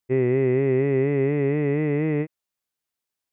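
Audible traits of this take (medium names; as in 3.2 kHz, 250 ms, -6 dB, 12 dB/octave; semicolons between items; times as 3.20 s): noise floor -86 dBFS; spectral tilt -7.5 dB/octave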